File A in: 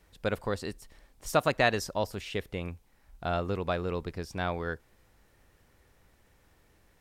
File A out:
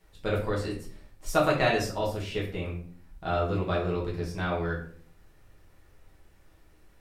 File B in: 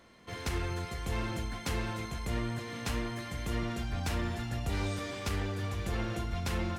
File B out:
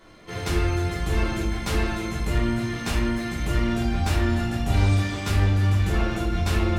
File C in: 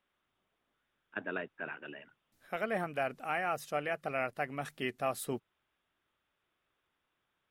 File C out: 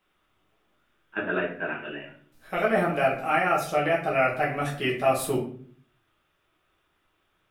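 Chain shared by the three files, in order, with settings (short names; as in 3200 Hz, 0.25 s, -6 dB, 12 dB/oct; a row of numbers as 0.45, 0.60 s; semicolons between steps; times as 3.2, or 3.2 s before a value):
shoebox room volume 49 m³, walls mixed, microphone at 1.1 m; normalise peaks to -9 dBFS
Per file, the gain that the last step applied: -4.5, +2.5, +4.5 dB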